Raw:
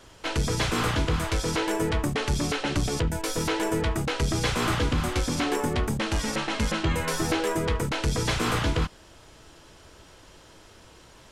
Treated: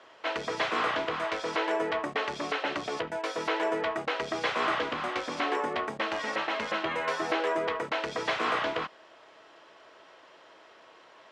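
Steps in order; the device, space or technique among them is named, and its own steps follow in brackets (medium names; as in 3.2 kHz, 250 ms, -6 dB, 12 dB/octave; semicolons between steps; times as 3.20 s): tin-can telephone (band-pass 470–3000 Hz; small resonant body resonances 650/1100/1900 Hz, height 6 dB)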